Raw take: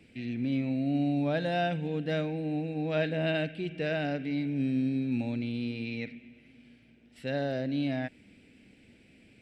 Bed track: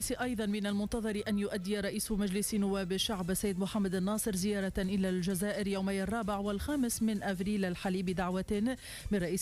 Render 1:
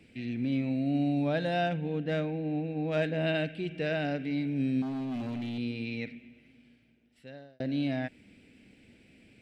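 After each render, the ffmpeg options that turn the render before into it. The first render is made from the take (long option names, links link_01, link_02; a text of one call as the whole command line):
ffmpeg -i in.wav -filter_complex "[0:a]asettb=1/sr,asplit=3[link_01][link_02][link_03];[link_01]atrim=end=1.664[link_04];[link_02]atrim=start=1.66:end=3.17,asetpts=PTS-STARTPTS,afade=type=in:duration=0.004:curve=qsin,afade=type=out:start_time=1.506:duration=0.004:curve=qsin,adynamicsmooth=sensitivity=3.5:basefreq=3600[link_05];[link_03]atrim=start=3.166[link_06];[link_04][link_05]acrossfade=duration=0.004:curve1=hsin:curve2=qsin[link_07];[link_07][link_06]acrossfade=duration=0.004:curve1=qsin:curve2=hsin,asettb=1/sr,asplit=3[link_08][link_09][link_10];[link_08]atrim=end=4.824[link_11];[link_09]atrim=start=4.82:end=5.58,asetpts=PTS-STARTPTS,afade=type=in:duration=0.004:curve=qsin,afade=type=out:start_time=0.756:duration=0.004:curve=qsin,volume=32dB,asoftclip=hard,volume=-32dB[link_12];[link_10]atrim=start=5.576[link_13];[link_11][link_12]acrossfade=duration=0.004:curve1=hsin:curve2=qsin[link_14];[link_14][link_13]acrossfade=duration=0.004:curve1=qsin:curve2=hsin,asplit=2[link_15][link_16];[link_15]atrim=end=7.6,asetpts=PTS-STARTPTS,afade=type=out:start_time=6.14:duration=1.46[link_17];[link_16]atrim=start=7.6,asetpts=PTS-STARTPTS,afade=type=in:duration=0.004:curve=hsin[link_18];[link_17][link_18]concat=n=2:v=0:a=1" out.wav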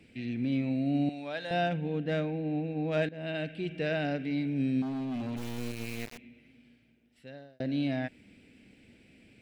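ffmpeg -i in.wav -filter_complex "[0:a]asettb=1/sr,asplit=3[link_01][link_02][link_03];[link_01]atrim=end=1.094[link_04];[link_02]atrim=start=1.09:end=1.51,asetpts=PTS-STARTPTS,afade=type=in:duration=0.004:curve=qsin,afade=type=out:start_time=0.416:duration=0.004:curve=qsin,highpass=frequency=1200:poles=1[link_05];[link_03]atrim=start=1.506[link_06];[link_04][link_05]acrossfade=duration=0.004:curve1=hsin:curve2=qsin[link_07];[link_07][link_06]acrossfade=duration=0.004:curve1=qsin:curve2=hsin,asplit=3[link_08][link_09][link_10];[link_08]afade=type=out:start_time=5.36:duration=0.02[link_11];[link_09]acrusher=bits=4:dc=4:mix=0:aa=0.000001,afade=type=in:start_time=5.36:duration=0.02,afade=type=out:start_time=6.17:duration=0.02[link_12];[link_10]afade=type=in:start_time=6.17:duration=0.02[link_13];[link_11][link_12][link_13]amix=inputs=3:normalize=0,asplit=2[link_14][link_15];[link_14]atrim=end=3.09,asetpts=PTS-STARTPTS,afade=type=out:start_time=3.086:duration=0.004:curve=hsin:silence=0.158489[link_16];[link_15]atrim=start=3.09,asetpts=PTS-STARTPTS,afade=type=in:duration=0.55:silence=0.158489[link_17];[link_16][link_17]concat=n=2:v=0:a=1" out.wav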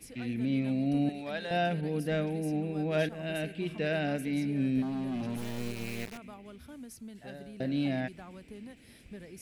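ffmpeg -i in.wav -i bed.wav -filter_complex "[1:a]volume=-14.5dB[link_01];[0:a][link_01]amix=inputs=2:normalize=0" out.wav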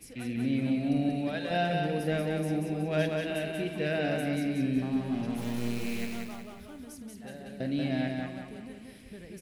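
ffmpeg -i in.wav -filter_complex "[0:a]asplit=2[link_01][link_02];[link_02]adelay=47,volume=-13dB[link_03];[link_01][link_03]amix=inputs=2:normalize=0,asplit=2[link_04][link_05];[link_05]aecho=0:1:185|370|555|740|925|1110:0.668|0.294|0.129|0.0569|0.0251|0.011[link_06];[link_04][link_06]amix=inputs=2:normalize=0" out.wav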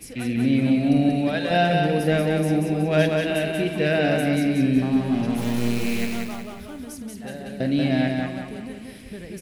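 ffmpeg -i in.wav -af "volume=9dB" out.wav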